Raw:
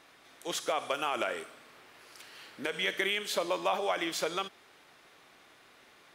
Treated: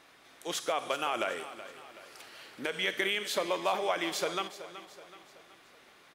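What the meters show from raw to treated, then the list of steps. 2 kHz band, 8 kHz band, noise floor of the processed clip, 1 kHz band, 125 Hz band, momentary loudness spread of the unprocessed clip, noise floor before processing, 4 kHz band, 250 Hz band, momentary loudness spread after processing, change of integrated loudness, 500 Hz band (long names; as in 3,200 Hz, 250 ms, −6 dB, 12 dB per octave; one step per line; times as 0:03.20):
0.0 dB, 0.0 dB, −59 dBFS, 0.0 dB, +0.5 dB, 18 LU, −60 dBFS, 0.0 dB, +0.5 dB, 19 LU, 0.0 dB, 0.0 dB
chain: repeating echo 376 ms, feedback 47%, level −14 dB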